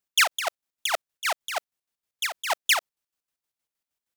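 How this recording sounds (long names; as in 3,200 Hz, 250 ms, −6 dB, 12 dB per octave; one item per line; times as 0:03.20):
chopped level 6.4 Hz, depth 60%, duty 50%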